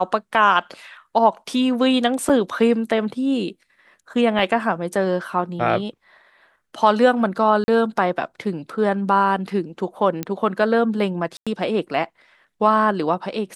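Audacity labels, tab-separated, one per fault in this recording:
2.290000	2.300000	dropout 6.1 ms
4.390000	4.390000	dropout 3.2 ms
7.640000	7.680000	dropout 40 ms
10.230000	10.230000	pop -11 dBFS
11.370000	11.470000	dropout 96 ms

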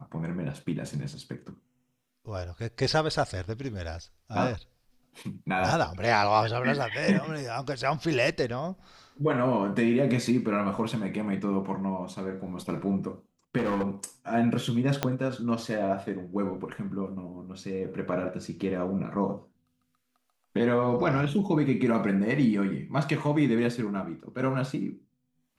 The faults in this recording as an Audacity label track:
13.570000	14.040000	clipped -24 dBFS
15.030000	15.030000	pop -10 dBFS

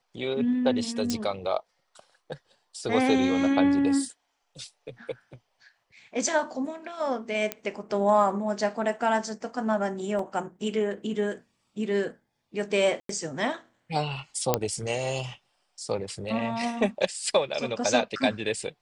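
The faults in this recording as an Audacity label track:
1.100000	1.100000	pop -14 dBFS
7.520000	7.520000	pop -12 dBFS
10.190000	10.190000	dropout 3 ms
13.000000	13.090000	dropout 93 ms
14.540000	14.540000	pop -6 dBFS

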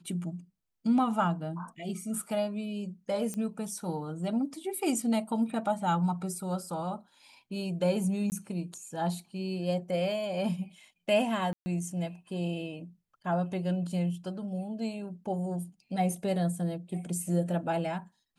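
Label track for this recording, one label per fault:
3.340000	3.340000	pop -22 dBFS
8.300000	8.320000	dropout 19 ms
11.530000	11.660000	dropout 130 ms

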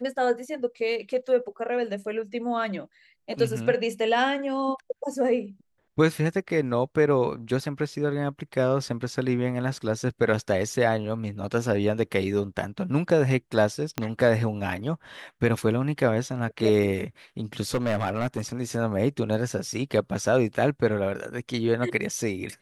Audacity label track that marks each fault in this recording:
13.980000	13.980000	pop -12 dBFS
17.740000	18.410000	clipped -20.5 dBFS

